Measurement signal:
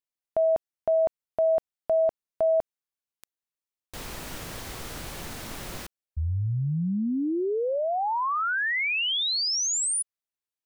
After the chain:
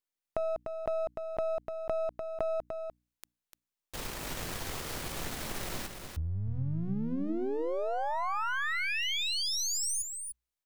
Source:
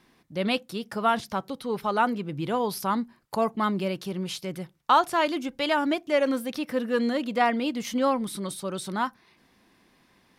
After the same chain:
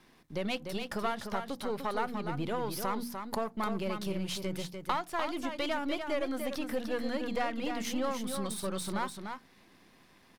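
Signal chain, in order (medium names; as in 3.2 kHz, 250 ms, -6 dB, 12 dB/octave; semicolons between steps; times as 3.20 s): partial rectifier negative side -7 dB; hum notches 60/120/180/240/300 Hz; compression 3:1, threshold -35 dBFS; on a send: delay 297 ms -6.5 dB; on the sum: trim +2.5 dB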